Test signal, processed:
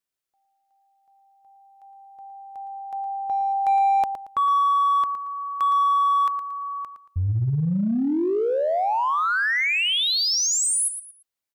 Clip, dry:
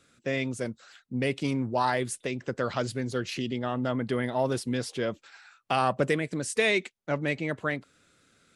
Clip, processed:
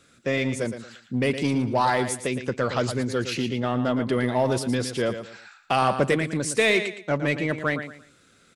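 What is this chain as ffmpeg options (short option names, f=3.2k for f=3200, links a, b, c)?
-filter_complex "[0:a]aecho=1:1:114|228|342:0.299|0.0836|0.0234,asplit=2[a][b];[b]asoftclip=type=hard:threshold=-26dB,volume=-7dB[c];[a][c]amix=inputs=2:normalize=0,volume=2dB"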